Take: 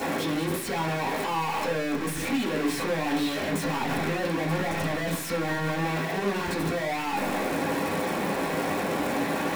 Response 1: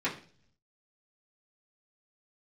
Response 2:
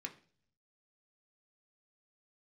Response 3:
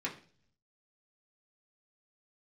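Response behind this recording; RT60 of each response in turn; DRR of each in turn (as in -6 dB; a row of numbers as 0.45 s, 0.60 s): 1; 0.45 s, 0.45 s, 0.45 s; -9.0 dB, 2.5 dB, -4.0 dB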